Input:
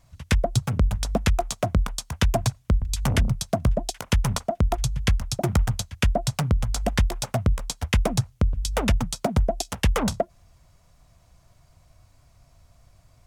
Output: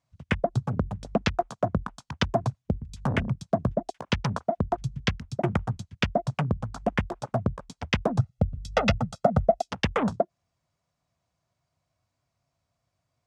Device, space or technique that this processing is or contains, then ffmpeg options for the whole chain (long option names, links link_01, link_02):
over-cleaned archive recording: -filter_complex "[0:a]highpass=130,lowpass=7400,afwtdn=0.0178,asettb=1/sr,asplit=3[link_01][link_02][link_03];[link_01]atrim=end=8.194[link_04];[link_02]atrim=start=8.19:end=9.65,asetpts=PTS-STARTPTS,afade=type=in:duration=0.004:curve=qsin,afade=type=out:start_time=1.456:duration=0.004:curve=qsin,aecho=1:1:1.5:0.94,atrim=end_sample=64386[link_05];[link_03]atrim=start=9.646[link_06];[link_04][link_05]acrossfade=duration=0.004:curve1=hsin:curve2=qsin[link_07];[link_07][link_06]acrossfade=duration=0.004:curve1=qsin:curve2=hsin"